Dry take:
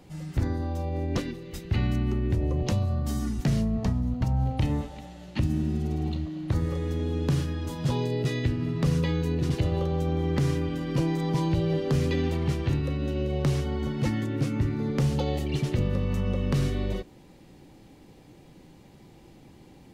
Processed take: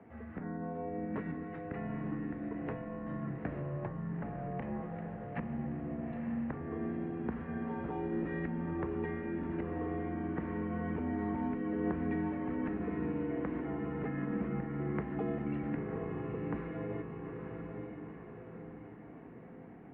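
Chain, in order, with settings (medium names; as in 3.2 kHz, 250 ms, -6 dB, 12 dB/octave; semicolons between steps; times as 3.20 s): compression, threshold -29 dBFS, peak gain reduction 9 dB; echo that smears into a reverb 905 ms, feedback 51%, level -4.5 dB; mistuned SSB -79 Hz 240–2100 Hz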